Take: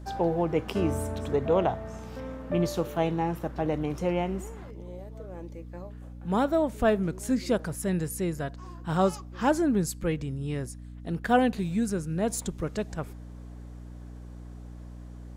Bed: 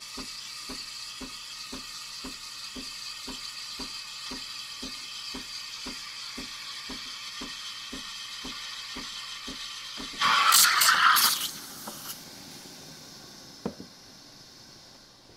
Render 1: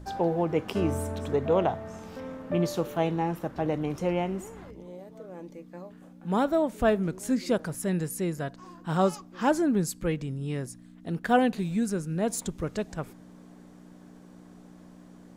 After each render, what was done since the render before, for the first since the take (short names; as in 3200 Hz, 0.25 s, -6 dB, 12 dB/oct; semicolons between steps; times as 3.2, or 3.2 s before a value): de-hum 60 Hz, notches 2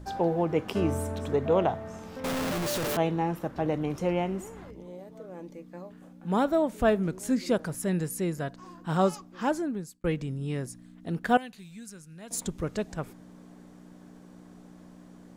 2.24–2.97 infinite clipping; 8.87–10.04 fade out equal-power; 11.37–12.31 passive tone stack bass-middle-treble 5-5-5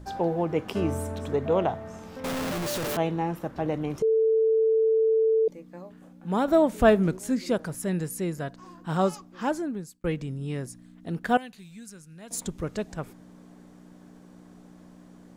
4.02–5.48 bleep 444 Hz -18.5 dBFS; 6.48–7.17 gain +5 dB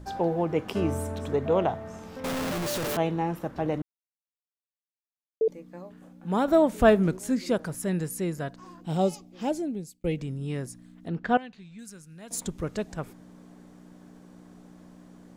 3.82–5.41 mute; 8.81–10.19 band shelf 1300 Hz -13 dB 1.1 oct; 11.08–11.79 air absorption 140 m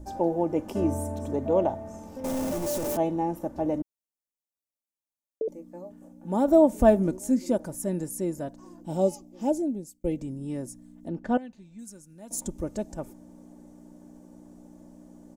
band shelf 2300 Hz -11.5 dB 2.3 oct; comb 3.4 ms, depth 51%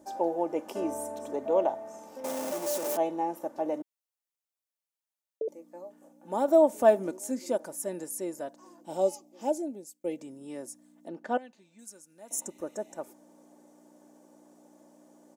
12.26–12.98 spectral repair 1900–5300 Hz before; HPF 440 Hz 12 dB/oct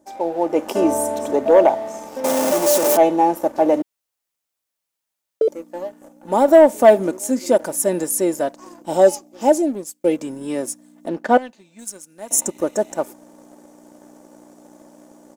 AGC gain up to 12 dB; sample leveller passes 1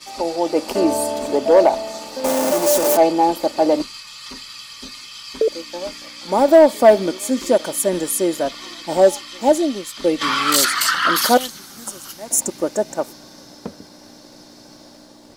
add bed +2.5 dB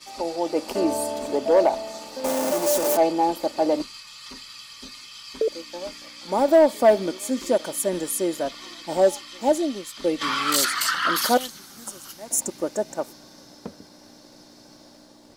gain -5.5 dB